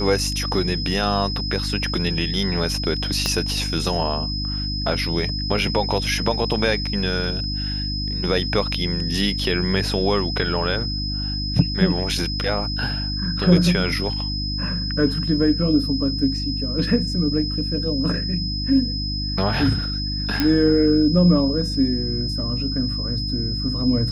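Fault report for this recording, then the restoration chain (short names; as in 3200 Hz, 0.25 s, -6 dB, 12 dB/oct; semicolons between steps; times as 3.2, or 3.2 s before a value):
hum 50 Hz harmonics 6 -27 dBFS
tone 5100 Hz -27 dBFS
3.26 pop -7 dBFS
20.4 pop -6 dBFS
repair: de-click; de-hum 50 Hz, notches 6; notch 5100 Hz, Q 30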